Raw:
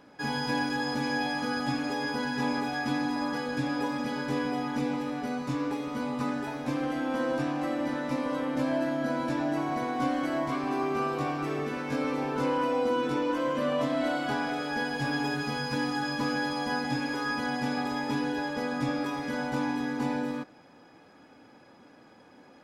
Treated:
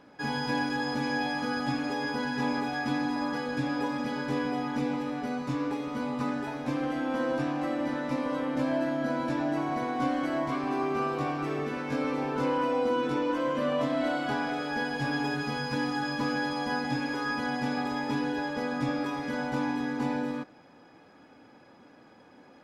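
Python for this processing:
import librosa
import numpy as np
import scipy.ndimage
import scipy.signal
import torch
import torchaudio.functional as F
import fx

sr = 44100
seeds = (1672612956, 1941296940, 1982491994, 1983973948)

y = fx.high_shelf(x, sr, hz=7200.0, db=-6.5)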